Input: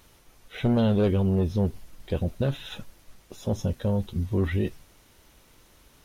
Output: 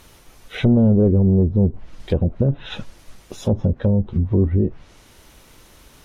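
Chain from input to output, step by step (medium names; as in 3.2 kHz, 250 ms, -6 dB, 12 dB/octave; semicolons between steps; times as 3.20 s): low-pass that closes with the level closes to 440 Hz, closed at -21.5 dBFS; trim +8.5 dB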